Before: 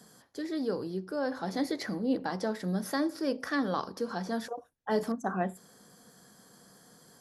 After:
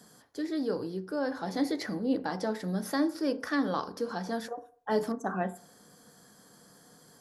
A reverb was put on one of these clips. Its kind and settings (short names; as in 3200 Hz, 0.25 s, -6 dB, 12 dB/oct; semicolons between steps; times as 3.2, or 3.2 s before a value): FDN reverb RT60 0.51 s, low-frequency decay 0.75×, high-frequency decay 0.3×, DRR 11.5 dB